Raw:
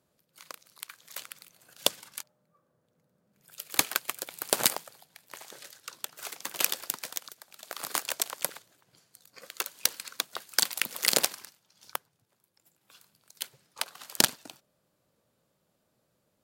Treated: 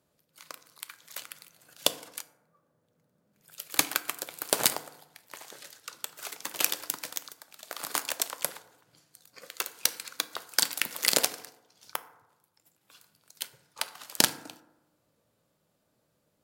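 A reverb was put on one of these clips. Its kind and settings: FDN reverb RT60 0.95 s, low-frequency decay 0.95×, high-frequency decay 0.4×, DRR 11 dB

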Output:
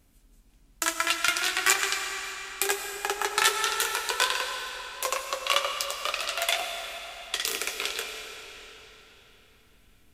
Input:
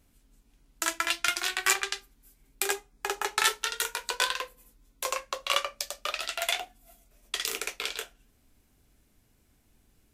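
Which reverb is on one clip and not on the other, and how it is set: digital reverb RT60 4 s, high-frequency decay 0.9×, pre-delay 55 ms, DRR 4.5 dB; gain +2 dB

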